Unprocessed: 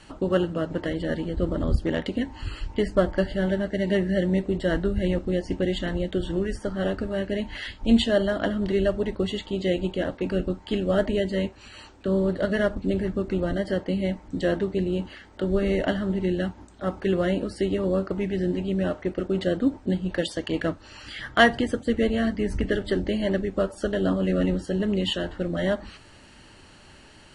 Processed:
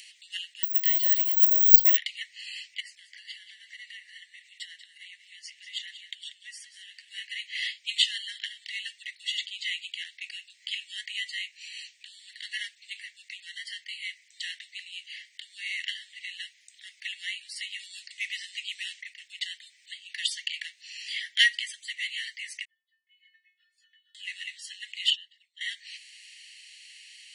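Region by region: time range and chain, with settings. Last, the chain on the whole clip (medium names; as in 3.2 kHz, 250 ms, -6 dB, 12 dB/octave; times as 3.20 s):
0.63–1.97 s: dynamic bell 4.5 kHz, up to +6 dB, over -55 dBFS, Q 1.3 + careless resampling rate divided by 2×, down filtered, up zero stuff + three bands expanded up and down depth 40%
2.80–7.09 s: compression 12:1, threshold -30 dBFS + delay 188 ms -12.5 dB
17.79–19.01 s: tilt shelf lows -7.5 dB, about 1.2 kHz + careless resampling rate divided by 2×, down none, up filtered
22.65–24.15 s: ladder band-pass 440 Hz, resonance 50% + inharmonic resonator 350 Hz, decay 0.27 s, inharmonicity 0.002 + tape noise reduction on one side only encoder only
25.10–25.61 s: resonances exaggerated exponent 1.5 + static phaser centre 300 Hz, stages 8
whole clip: steep high-pass 1.9 kHz 96 dB/octave; upward compressor, threshold -53 dBFS; trim +5.5 dB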